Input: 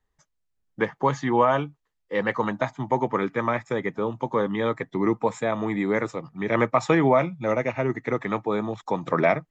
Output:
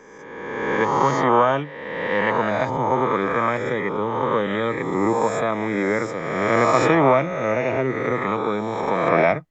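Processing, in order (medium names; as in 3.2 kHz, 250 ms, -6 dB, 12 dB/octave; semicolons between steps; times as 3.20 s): reverse spectral sustain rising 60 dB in 1.62 s; AAC 128 kbps 44.1 kHz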